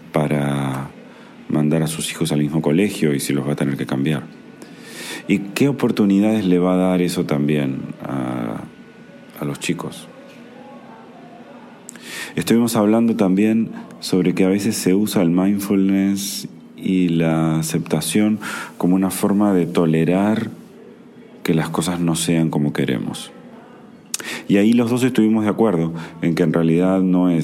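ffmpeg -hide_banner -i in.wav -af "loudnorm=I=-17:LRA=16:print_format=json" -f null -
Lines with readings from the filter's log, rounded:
"input_i" : "-18.5",
"input_tp" : "-2.7",
"input_lra" : "5.6",
"input_thresh" : "-29.3",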